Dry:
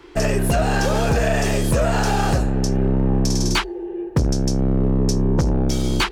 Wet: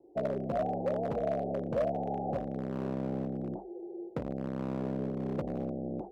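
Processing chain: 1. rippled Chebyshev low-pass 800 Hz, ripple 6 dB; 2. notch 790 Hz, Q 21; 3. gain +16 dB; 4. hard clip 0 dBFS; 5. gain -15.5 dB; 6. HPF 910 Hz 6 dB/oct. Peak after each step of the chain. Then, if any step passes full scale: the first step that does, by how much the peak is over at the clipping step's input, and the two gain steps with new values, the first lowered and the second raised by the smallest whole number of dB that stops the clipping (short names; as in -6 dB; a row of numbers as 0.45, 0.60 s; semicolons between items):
-10.5, -10.5, +5.5, 0.0, -15.5, -19.5 dBFS; step 3, 5.5 dB; step 3 +10 dB, step 5 -9.5 dB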